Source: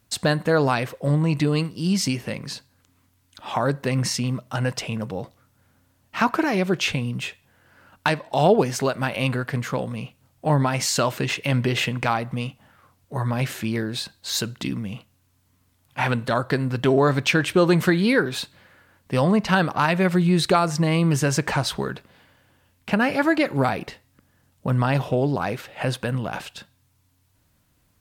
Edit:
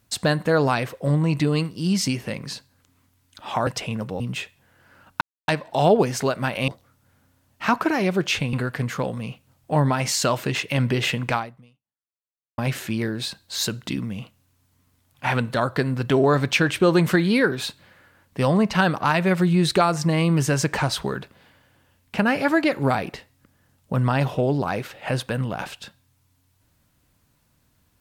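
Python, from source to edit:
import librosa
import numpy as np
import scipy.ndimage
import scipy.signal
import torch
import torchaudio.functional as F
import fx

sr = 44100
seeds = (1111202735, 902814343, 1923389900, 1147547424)

y = fx.edit(x, sr, fx.cut(start_s=3.67, length_s=1.01),
    fx.move(start_s=5.21, length_s=1.85, to_s=9.27),
    fx.insert_silence(at_s=8.07, length_s=0.27),
    fx.fade_out_span(start_s=12.08, length_s=1.24, curve='exp'), tone=tone)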